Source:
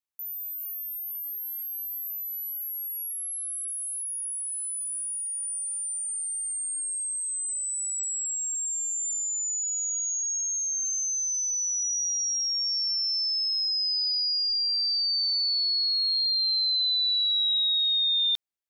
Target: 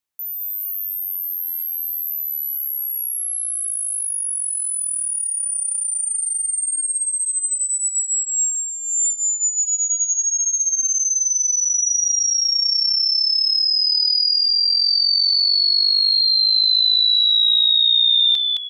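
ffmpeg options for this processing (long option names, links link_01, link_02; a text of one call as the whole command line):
ffmpeg -i in.wav -filter_complex "[0:a]asplit=5[link_01][link_02][link_03][link_04][link_05];[link_02]adelay=215,afreqshift=-120,volume=-4dB[link_06];[link_03]adelay=430,afreqshift=-240,volume=-13.1dB[link_07];[link_04]adelay=645,afreqshift=-360,volume=-22.2dB[link_08];[link_05]adelay=860,afreqshift=-480,volume=-31.4dB[link_09];[link_01][link_06][link_07][link_08][link_09]amix=inputs=5:normalize=0,volume=7.5dB" out.wav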